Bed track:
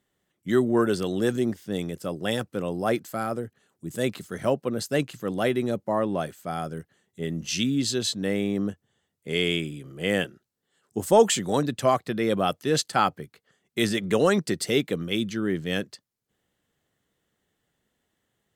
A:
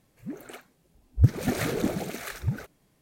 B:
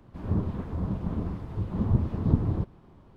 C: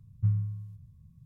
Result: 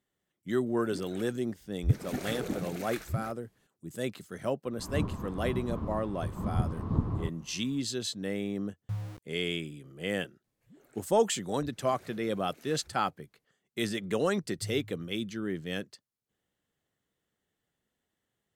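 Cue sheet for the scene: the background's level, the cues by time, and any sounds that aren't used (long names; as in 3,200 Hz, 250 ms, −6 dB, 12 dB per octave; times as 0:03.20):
bed track −7.5 dB
0:00.66: mix in A −8.5 dB + speech leveller within 3 dB
0:04.65: mix in B −5.5 dB + parametric band 1,100 Hz +9.5 dB 0.43 octaves
0:08.66: mix in C −9 dB + centre clipping without the shift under −32.5 dBFS
0:10.44: mix in A −16.5 dB + downward compressor 2.5 to 1, threshold −38 dBFS
0:14.39: mix in C −14.5 dB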